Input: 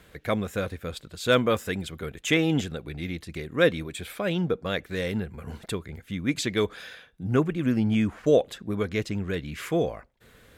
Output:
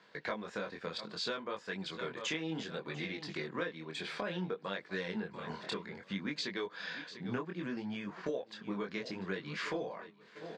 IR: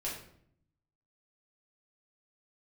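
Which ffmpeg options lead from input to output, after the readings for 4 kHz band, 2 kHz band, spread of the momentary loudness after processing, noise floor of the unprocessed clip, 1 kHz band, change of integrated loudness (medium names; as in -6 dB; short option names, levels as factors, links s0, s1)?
-7.0 dB, -8.5 dB, 5 LU, -56 dBFS, -8.5 dB, -12.0 dB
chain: -filter_complex "[0:a]highpass=f=170:w=0.5412,highpass=f=170:w=1.3066,equalizer=f=260:t=q:w=4:g=-5,equalizer=f=970:t=q:w=4:g=10,equalizer=f=1700:t=q:w=4:g=5,equalizer=f=4600:t=q:w=4:g=8,lowpass=f=6000:w=0.5412,lowpass=f=6000:w=1.3066,asplit=2[s0][s1];[s1]aecho=0:1:694|1388|2082:0.0891|0.0401|0.018[s2];[s0][s2]amix=inputs=2:normalize=0,acompressor=threshold=0.0224:ratio=10,flanger=delay=20:depth=5.4:speed=0.63,agate=range=0.447:threshold=0.00251:ratio=16:detection=peak,volume=1.19"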